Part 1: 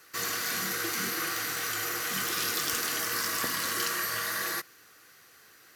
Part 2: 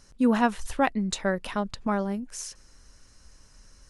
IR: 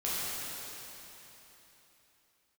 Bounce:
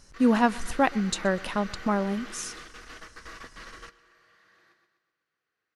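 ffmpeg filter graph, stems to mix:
-filter_complex "[0:a]asoftclip=type=tanh:threshold=-28.5dB,lowpass=3.3k,volume=-6dB,asplit=2[a][b];[b]volume=-20.5dB[c];[1:a]volume=1dB,asplit=3[d][e][f];[e]volume=-23.5dB[g];[f]apad=whole_len=253995[h];[a][h]sidechaingate=range=-33dB:threshold=-50dB:ratio=16:detection=peak[i];[c][g]amix=inputs=2:normalize=0,aecho=0:1:125|250|375|500|625|750|875:1|0.48|0.23|0.111|0.0531|0.0255|0.0122[j];[i][d][j]amix=inputs=3:normalize=0"

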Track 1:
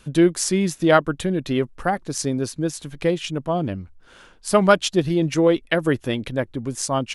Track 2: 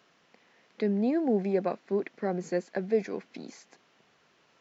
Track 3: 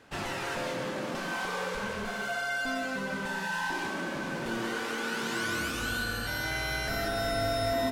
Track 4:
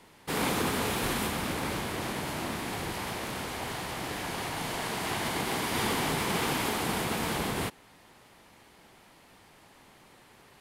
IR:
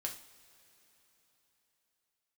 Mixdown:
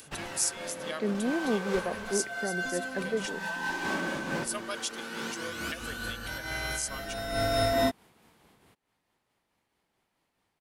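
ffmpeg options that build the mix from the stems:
-filter_complex "[0:a]aderivative,aecho=1:1:1.8:0.49,acompressor=mode=upward:threshold=-38dB:ratio=2.5,volume=-4dB,asplit=2[a][b];[1:a]adelay=200,volume=-2dB[c];[2:a]volume=3dB,asplit=2[d][e];[e]volume=-11.5dB[f];[3:a]acompressor=threshold=-39dB:ratio=5,adelay=1050,volume=-19.5dB[g];[b]apad=whole_len=349004[h];[d][h]sidechaincompress=threshold=-51dB:ratio=8:attack=12:release=317[i];[4:a]atrim=start_sample=2205[j];[f][j]afir=irnorm=-1:irlink=0[k];[a][c][i][g][k]amix=inputs=5:normalize=0,tremolo=f=4.6:d=0.32"

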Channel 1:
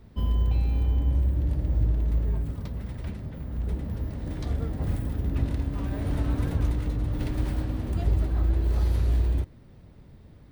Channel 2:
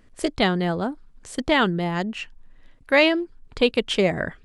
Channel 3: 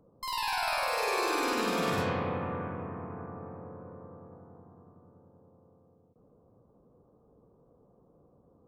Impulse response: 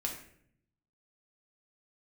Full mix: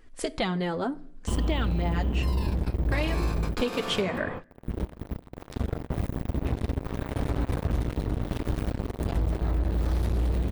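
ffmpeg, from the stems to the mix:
-filter_complex "[0:a]bandreject=f=4.6k:w=25,acrusher=bits=3:mix=0:aa=0.5,adelay=1100,volume=-0.5dB,asplit=2[a][b];[b]volume=-20.5dB[c];[1:a]acompressor=threshold=-24dB:ratio=3,flanger=delay=2.3:depth=6:regen=2:speed=0.69:shape=triangular,volume=1.5dB,asplit=3[d][e][f];[e]volume=-15.5dB[g];[2:a]adelay=2000,volume=-3.5dB[h];[f]apad=whole_len=470844[i];[h][i]sidechaingate=range=-35dB:threshold=-42dB:ratio=16:detection=peak[j];[3:a]atrim=start_sample=2205[k];[c][g]amix=inputs=2:normalize=0[l];[l][k]afir=irnorm=-1:irlink=0[m];[a][d][j][m]amix=inputs=4:normalize=0,acompressor=threshold=-22dB:ratio=6"

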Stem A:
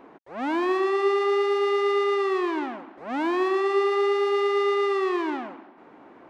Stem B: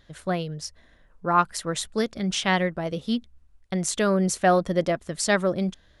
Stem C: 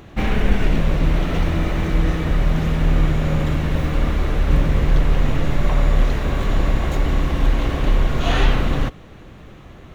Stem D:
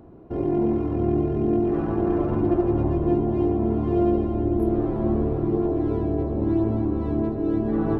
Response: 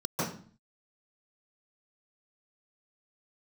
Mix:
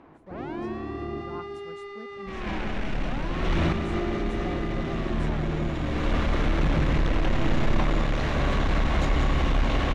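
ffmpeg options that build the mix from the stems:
-filter_complex "[0:a]acompressor=threshold=-32dB:ratio=4,volume=-4dB,asplit=2[a][b];[b]volume=-10dB[c];[1:a]equalizer=f=4k:w=0.43:g=-14,volume=-17.5dB,asplit=2[d][e];[2:a]lowshelf=f=160:g=-6,asoftclip=type=tanh:threshold=-20.5dB,adelay=2100,volume=2dB,asplit=2[f][g];[g]volume=-7.5dB[h];[3:a]volume=-11dB,asplit=3[i][j][k];[i]atrim=end=1.22,asetpts=PTS-STARTPTS,afade=t=out:st=1.216:d=0.004:c=hsin[l];[j]atrim=start=1.22:end=3.55,asetpts=PTS-STARTPTS,volume=0[m];[k]atrim=start=3.55,asetpts=PTS-STARTPTS,afade=t=in:d=0.004:c=hsin[n];[l][m][n]concat=n=3:v=0:a=1,asplit=2[o][p];[p]volume=-4.5dB[q];[e]apad=whole_len=531082[r];[f][r]sidechaincompress=threshold=-56dB:ratio=10:attack=16:release=367[s];[c][h][q]amix=inputs=3:normalize=0,aecho=0:1:187|374|561|748|935|1122:1|0.42|0.176|0.0741|0.0311|0.0131[t];[a][d][s][o][t]amix=inputs=5:normalize=0,lowpass=6.3k,equalizer=f=430:w=3.1:g=-3.5"

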